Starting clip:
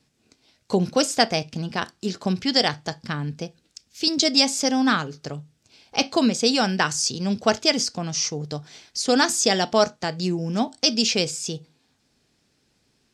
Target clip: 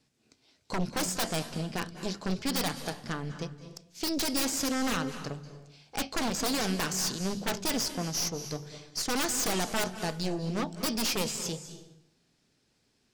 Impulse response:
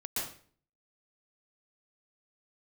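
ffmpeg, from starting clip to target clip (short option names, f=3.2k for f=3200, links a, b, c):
-filter_complex "[0:a]aeval=exprs='0.631*(cos(1*acos(clip(val(0)/0.631,-1,1)))-cos(1*PI/2))+0.316*(cos(3*acos(clip(val(0)/0.631,-1,1)))-cos(3*PI/2))+0.0562*(cos(6*acos(clip(val(0)/0.631,-1,1)))-cos(6*PI/2))':c=same,aeval=exprs='0.0841*(abs(mod(val(0)/0.0841+3,4)-2)-1)':c=same,bandreject=f=50:t=h:w=6,bandreject=f=100:t=h:w=6,bandreject=f=150:t=h:w=6,bandreject=f=200:t=h:w=6,asplit=2[a][b];[1:a]atrim=start_sample=2205,asetrate=26460,aresample=44100[c];[b][c]afir=irnorm=-1:irlink=0,volume=-17dB[d];[a][d]amix=inputs=2:normalize=0"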